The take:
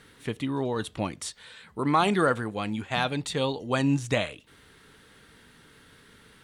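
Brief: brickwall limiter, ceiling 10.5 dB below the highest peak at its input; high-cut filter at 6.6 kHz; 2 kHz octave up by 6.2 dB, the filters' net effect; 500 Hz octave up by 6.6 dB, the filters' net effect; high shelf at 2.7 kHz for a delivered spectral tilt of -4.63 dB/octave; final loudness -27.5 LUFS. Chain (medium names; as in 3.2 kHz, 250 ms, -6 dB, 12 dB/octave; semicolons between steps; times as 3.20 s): low-pass 6.6 kHz; peaking EQ 500 Hz +7.5 dB; peaking EQ 2 kHz +9 dB; treble shelf 2.7 kHz -3 dB; trim -0.5 dB; peak limiter -15.5 dBFS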